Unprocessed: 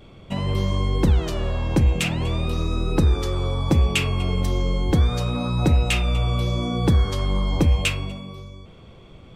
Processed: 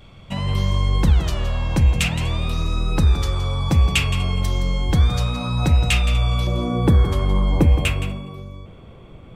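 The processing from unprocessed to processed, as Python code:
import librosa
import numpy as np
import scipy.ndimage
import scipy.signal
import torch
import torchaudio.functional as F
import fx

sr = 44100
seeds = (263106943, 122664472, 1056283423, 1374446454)

y = fx.peak_eq(x, sr, hz=fx.steps((0.0, 360.0), (6.47, 5100.0)), db=-9.5, octaves=1.4)
y = y + 10.0 ** (-12.0 / 20.0) * np.pad(y, (int(168 * sr / 1000.0), 0))[:len(y)]
y = y * 10.0 ** (3.0 / 20.0)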